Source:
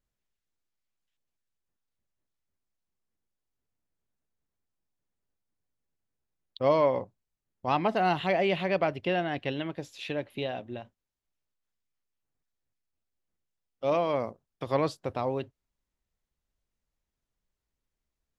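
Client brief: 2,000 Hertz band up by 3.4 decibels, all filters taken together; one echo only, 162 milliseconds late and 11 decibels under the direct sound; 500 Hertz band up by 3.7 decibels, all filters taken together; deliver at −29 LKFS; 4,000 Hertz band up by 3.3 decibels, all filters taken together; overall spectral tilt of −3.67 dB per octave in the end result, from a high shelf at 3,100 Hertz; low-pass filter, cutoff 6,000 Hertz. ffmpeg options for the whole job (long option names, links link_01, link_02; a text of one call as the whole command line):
ffmpeg -i in.wav -af "lowpass=6000,equalizer=frequency=500:width_type=o:gain=4.5,equalizer=frequency=2000:width_type=o:gain=4.5,highshelf=frequency=3100:gain=-7.5,equalizer=frequency=4000:width_type=o:gain=8.5,aecho=1:1:162:0.282,volume=-3dB" out.wav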